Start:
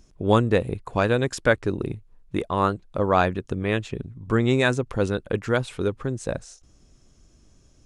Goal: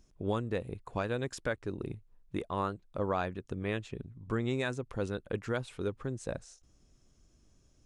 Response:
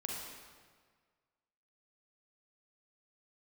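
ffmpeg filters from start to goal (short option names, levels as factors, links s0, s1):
-af "alimiter=limit=0.266:level=0:latency=1:release=453,volume=0.355"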